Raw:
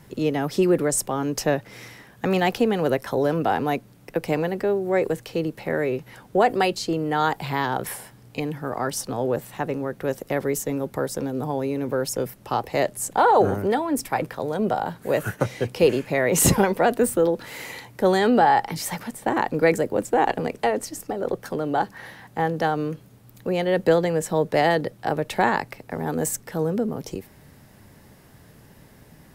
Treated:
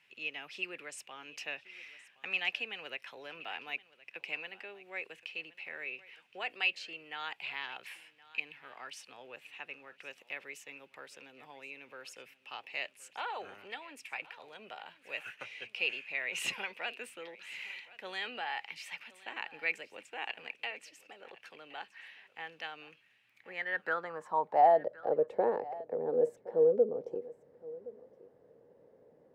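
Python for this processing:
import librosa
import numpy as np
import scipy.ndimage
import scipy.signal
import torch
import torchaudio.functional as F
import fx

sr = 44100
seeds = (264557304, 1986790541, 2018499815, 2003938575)

y = fx.filter_sweep_bandpass(x, sr, from_hz=2600.0, to_hz=490.0, start_s=23.23, end_s=25.15, q=6.8)
y = y + 10.0 ** (-19.5 / 20.0) * np.pad(y, (int(1069 * sr / 1000.0), 0))[:len(y)]
y = y * librosa.db_to_amplitude(3.0)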